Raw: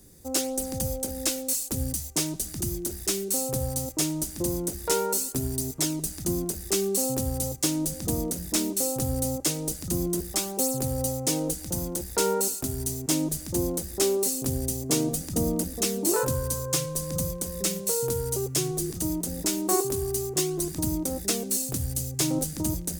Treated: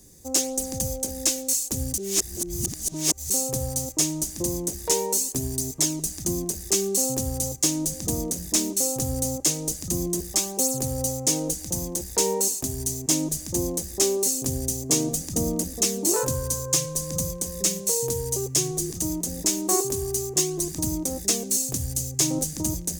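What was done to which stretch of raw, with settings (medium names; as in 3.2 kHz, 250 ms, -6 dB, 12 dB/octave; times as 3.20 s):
1.98–3.30 s: reverse
whole clip: peaking EQ 6.5 kHz +8.5 dB 0.58 oct; band-stop 1.4 kHz, Q 7.4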